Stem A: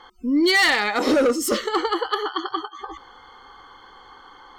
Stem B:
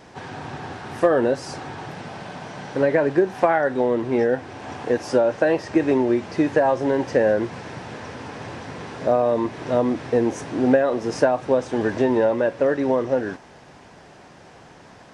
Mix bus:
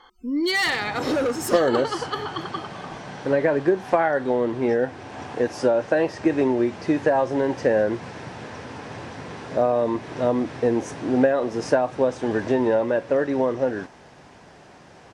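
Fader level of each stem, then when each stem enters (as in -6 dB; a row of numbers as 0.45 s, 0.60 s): -5.0 dB, -1.5 dB; 0.00 s, 0.50 s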